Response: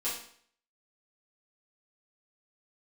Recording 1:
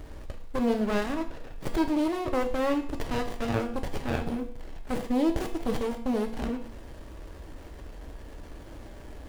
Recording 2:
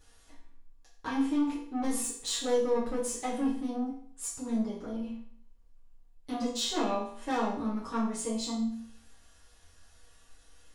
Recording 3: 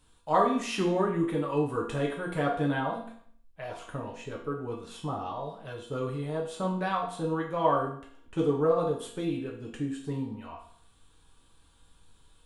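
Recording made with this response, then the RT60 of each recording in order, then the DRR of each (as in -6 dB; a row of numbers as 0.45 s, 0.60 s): 2; 0.55 s, 0.55 s, 0.55 s; 4.0 dB, -10.5 dB, -3.0 dB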